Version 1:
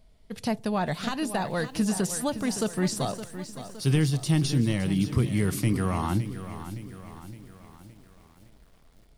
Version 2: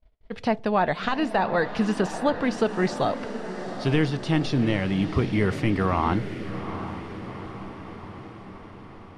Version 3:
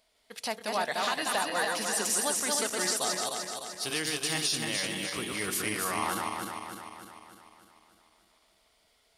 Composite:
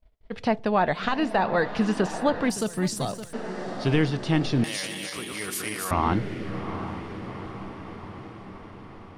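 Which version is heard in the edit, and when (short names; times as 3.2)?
2
2.5–3.33 from 1
4.64–5.91 from 3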